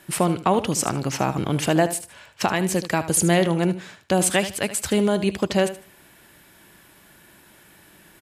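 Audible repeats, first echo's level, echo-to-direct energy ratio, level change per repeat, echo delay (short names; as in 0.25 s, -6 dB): 2, -13.0 dB, -13.0 dB, -13.0 dB, 76 ms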